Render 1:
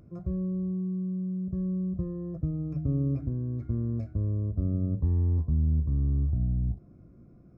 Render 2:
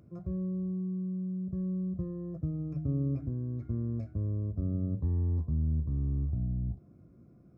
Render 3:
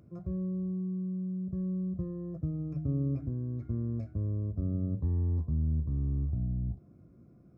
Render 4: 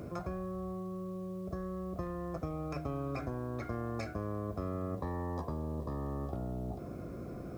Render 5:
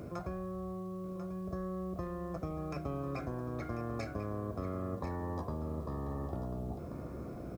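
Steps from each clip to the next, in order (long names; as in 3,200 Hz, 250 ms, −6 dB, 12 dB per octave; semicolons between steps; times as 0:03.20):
high-pass filter 66 Hz; level −3 dB
no processing that can be heard
every bin compressed towards the loudest bin 4 to 1; level −2 dB
single-tap delay 1,042 ms −10.5 dB; level −1 dB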